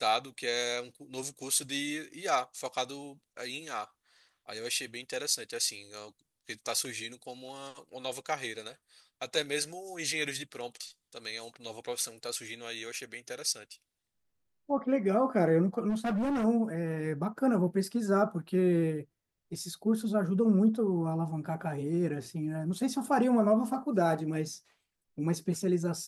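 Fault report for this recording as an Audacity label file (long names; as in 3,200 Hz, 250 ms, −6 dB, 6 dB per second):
15.890000	16.450000	clipping −27.5 dBFS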